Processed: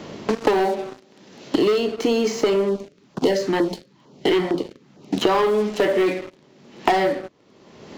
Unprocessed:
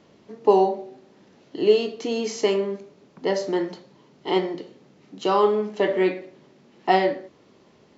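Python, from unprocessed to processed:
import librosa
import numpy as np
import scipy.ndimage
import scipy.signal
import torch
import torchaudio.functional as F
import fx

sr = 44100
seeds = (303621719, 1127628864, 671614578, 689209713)

y = fx.leveller(x, sr, passes=3)
y = fx.filter_lfo_notch(y, sr, shape='saw_down', hz=2.2, low_hz=350.0, high_hz=2600.0, q=0.97, at=(2.69, 5.19))
y = fx.band_squash(y, sr, depth_pct=100)
y = y * librosa.db_to_amplitude(-5.5)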